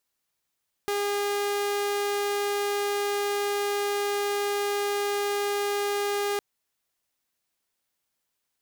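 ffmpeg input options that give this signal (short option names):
-f lavfi -i "aevalsrc='0.075*(2*mod(407*t,1)-1)':d=5.51:s=44100"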